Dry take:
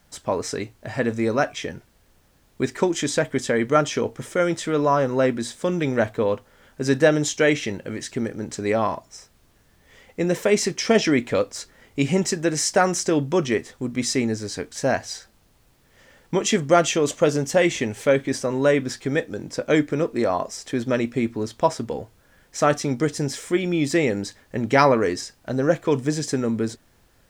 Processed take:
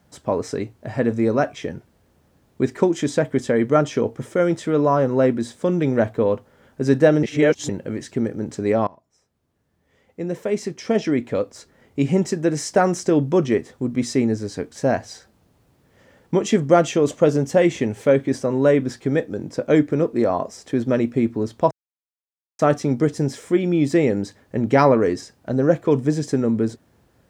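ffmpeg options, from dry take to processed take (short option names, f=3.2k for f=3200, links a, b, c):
-filter_complex "[0:a]asplit=6[a][b][c][d][e][f];[a]atrim=end=7.232[g];[b]atrim=start=7.228:end=7.692,asetpts=PTS-STARTPTS,areverse[h];[c]atrim=start=7.688:end=8.87,asetpts=PTS-STARTPTS,afade=t=out:st=1.178:d=0.004:c=hsin:silence=0.0794328[i];[d]atrim=start=8.87:end=21.71,asetpts=PTS-STARTPTS,afade=t=in:d=3.9:silence=0.0794328,afade=t=out:st=12.836:d=0.004:c=hsin[j];[e]atrim=start=21.71:end=22.59,asetpts=PTS-STARTPTS,volume=0[k];[f]atrim=start=22.59,asetpts=PTS-STARTPTS,afade=t=in:d=0.004:c=hsin[l];[g][h]acrossfade=d=0.004:c1=hsin:c2=hsin[m];[i][j][k][l]concat=n=4:v=0:a=1[n];[m][n]acrossfade=d=0.004:c1=hsin:c2=hsin,highpass=78,tiltshelf=f=1.1k:g=5.5,volume=-1dB"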